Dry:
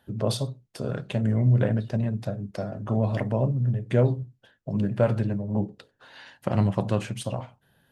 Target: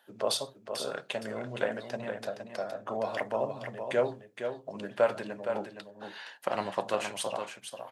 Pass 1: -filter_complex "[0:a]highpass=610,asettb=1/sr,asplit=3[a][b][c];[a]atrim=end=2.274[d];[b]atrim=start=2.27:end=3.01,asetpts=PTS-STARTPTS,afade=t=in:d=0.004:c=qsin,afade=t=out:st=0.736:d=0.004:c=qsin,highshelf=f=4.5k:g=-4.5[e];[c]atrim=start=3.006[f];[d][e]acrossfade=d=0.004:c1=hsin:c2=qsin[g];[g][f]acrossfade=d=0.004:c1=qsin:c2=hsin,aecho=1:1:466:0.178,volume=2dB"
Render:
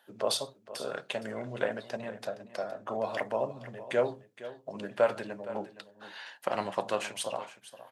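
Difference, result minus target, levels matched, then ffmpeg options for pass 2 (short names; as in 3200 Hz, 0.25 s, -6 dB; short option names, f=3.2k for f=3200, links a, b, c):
echo-to-direct -7.5 dB
-filter_complex "[0:a]highpass=610,asettb=1/sr,asplit=3[a][b][c];[a]atrim=end=2.274[d];[b]atrim=start=2.27:end=3.01,asetpts=PTS-STARTPTS,afade=t=in:d=0.004:c=qsin,afade=t=out:st=0.736:d=0.004:c=qsin,highshelf=f=4.5k:g=-4.5[e];[c]atrim=start=3.006[f];[d][e]acrossfade=d=0.004:c1=hsin:c2=qsin[g];[g][f]acrossfade=d=0.004:c1=qsin:c2=hsin,aecho=1:1:466:0.422,volume=2dB"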